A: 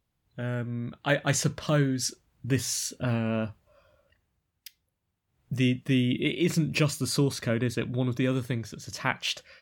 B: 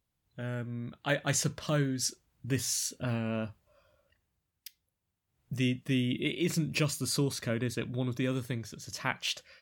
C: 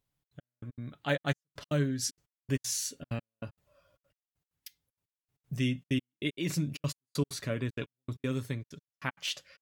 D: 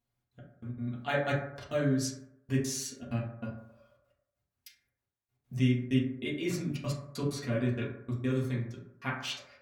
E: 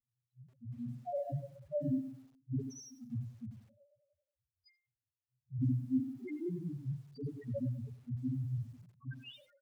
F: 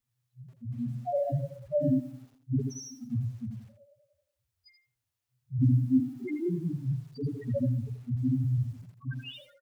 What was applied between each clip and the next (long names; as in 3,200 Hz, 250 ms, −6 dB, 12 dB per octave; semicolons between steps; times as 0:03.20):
high-shelf EQ 4,300 Hz +5 dB; level −5 dB
gate pattern "xxx.x...x.xx" 193 BPM −60 dB; comb filter 7.1 ms, depth 39%; level −2 dB
convolution reverb RT60 0.80 s, pre-delay 4 ms, DRR −5.5 dB; level −5.5 dB
spectral peaks only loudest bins 1; single-tap delay 79 ms −21.5 dB; feedback echo at a low word length 96 ms, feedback 35%, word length 10 bits, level −14.5 dB; level +1.5 dB
single-tap delay 81 ms −9.5 dB; level +8 dB